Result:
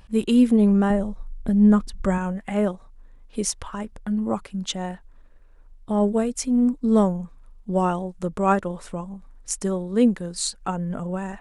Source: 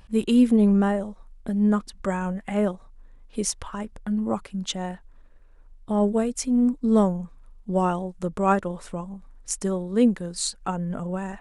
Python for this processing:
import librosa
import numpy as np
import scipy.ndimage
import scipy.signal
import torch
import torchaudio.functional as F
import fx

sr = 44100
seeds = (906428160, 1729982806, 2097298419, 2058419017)

y = fx.low_shelf(x, sr, hz=160.0, db=12.0, at=(0.9, 2.18))
y = y * 10.0 ** (1.0 / 20.0)